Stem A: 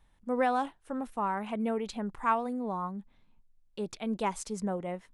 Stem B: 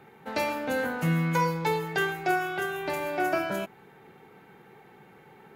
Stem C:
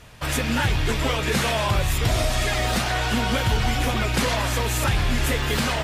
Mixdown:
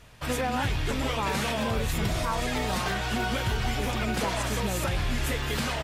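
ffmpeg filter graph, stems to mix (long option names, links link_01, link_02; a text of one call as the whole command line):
ffmpeg -i stem1.wav -i stem2.wav -i stem3.wav -filter_complex "[0:a]volume=0.5dB[link_01];[1:a]highpass=120,aeval=exprs='0.211*(cos(1*acos(clip(val(0)/0.211,-1,1)))-cos(1*PI/2))+0.0188*(cos(7*acos(clip(val(0)/0.211,-1,1)))-cos(7*PI/2))':channel_layout=same,adelay=900,volume=-6dB[link_02];[2:a]volume=-6dB[link_03];[link_01][link_02][link_03]amix=inputs=3:normalize=0,alimiter=limit=-18dB:level=0:latency=1:release=90" out.wav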